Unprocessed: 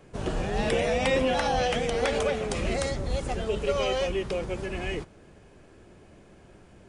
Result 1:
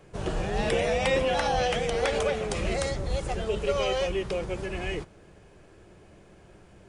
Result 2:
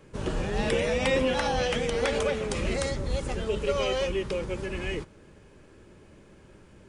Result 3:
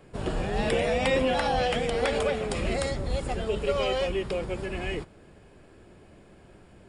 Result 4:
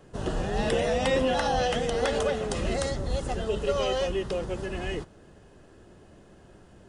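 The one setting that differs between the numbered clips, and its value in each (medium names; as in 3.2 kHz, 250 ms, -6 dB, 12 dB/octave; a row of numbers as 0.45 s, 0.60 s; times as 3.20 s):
band-stop, frequency: 250 Hz, 710 Hz, 6.1 kHz, 2.3 kHz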